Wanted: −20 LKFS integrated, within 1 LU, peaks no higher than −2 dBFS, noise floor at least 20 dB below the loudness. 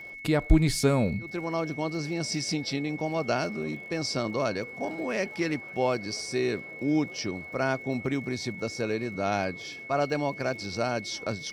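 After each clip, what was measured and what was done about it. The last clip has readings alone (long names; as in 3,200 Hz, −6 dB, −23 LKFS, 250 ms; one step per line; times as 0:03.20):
crackle rate 57 per second; interfering tone 2,200 Hz; level of the tone −40 dBFS; integrated loudness −29.5 LKFS; sample peak −8.0 dBFS; target loudness −20.0 LKFS
→ click removal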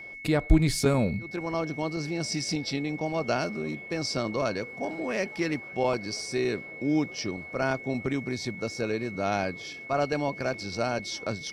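crackle rate 0.17 per second; interfering tone 2,200 Hz; level of the tone −40 dBFS
→ notch filter 2,200 Hz, Q 30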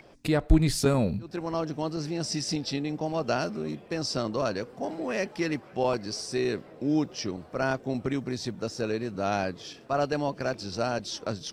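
interfering tone none found; integrated loudness −29.5 LKFS; sample peak −8.0 dBFS; target loudness −20.0 LKFS
→ level +9.5 dB
brickwall limiter −2 dBFS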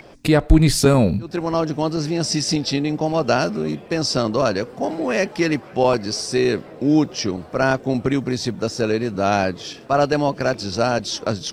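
integrated loudness −20.5 LKFS; sample peak −2.0 dBFS; background noise floor −41 dBFS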